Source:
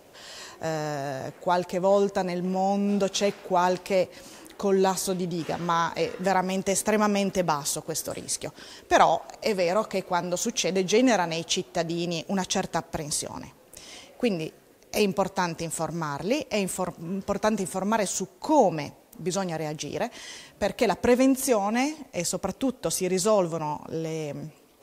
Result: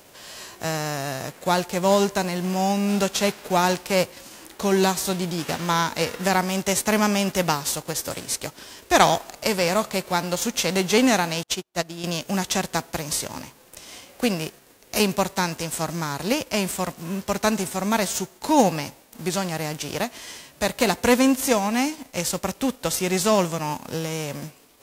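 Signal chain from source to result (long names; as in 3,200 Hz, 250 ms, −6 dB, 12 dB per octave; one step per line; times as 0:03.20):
spectral envelope flattened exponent 0.6
0:11.43–0:12.04: expander for the loud parts 2.5 to 1, over −46 dBFS
level +2.5 dB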